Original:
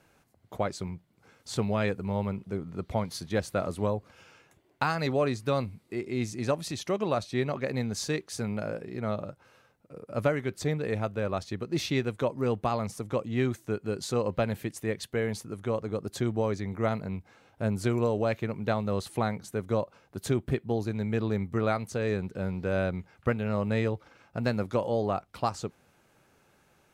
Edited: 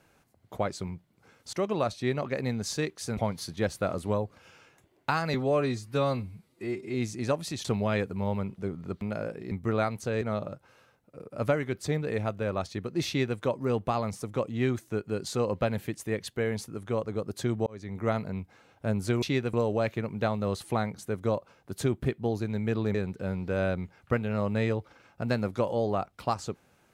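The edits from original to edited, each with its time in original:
1.53–2.90 s: swap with 6.84–8.48 s
5.07–6.14 s: stretch 1.5×
11.84–12.15 s: copy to 17.99 s
16.43–16.78 s: fade in
21.40–22.10 s: move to 8.98 s

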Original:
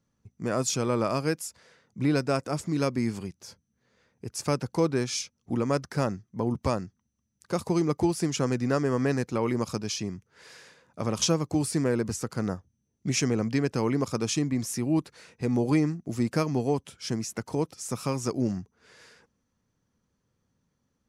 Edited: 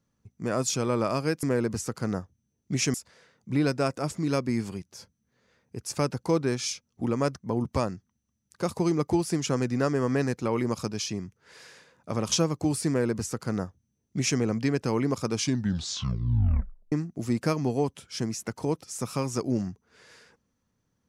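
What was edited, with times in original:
5.88–6.29 s: delete
11.78–13.29 s: copy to 1.43 s
14.23 s: tape stop 1.59 s

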